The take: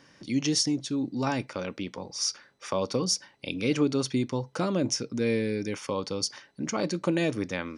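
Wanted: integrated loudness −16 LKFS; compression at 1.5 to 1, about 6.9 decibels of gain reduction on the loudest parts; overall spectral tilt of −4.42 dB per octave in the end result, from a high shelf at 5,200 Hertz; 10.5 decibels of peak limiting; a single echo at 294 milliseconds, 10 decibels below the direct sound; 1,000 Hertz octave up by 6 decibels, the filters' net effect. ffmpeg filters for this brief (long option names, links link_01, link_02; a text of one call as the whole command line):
ffmpeg -i in.wav -af "equalizer=frequency=1000:width_type=o:gain=7.5,highshelf=frequency=5200:gain=-6,acompressor=threshold=-39dB:ratio=1.5,alimiter=level_in=2.5dB:limit=-24dB:level=0:latency=1,volume=-2.5dB,aecho=1:1:294:0.316,volume=21dB" out.wav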